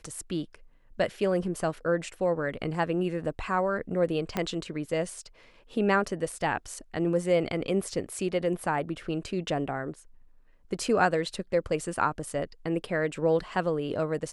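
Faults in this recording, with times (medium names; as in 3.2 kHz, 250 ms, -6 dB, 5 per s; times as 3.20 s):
4.37 s: pop -14 dBFS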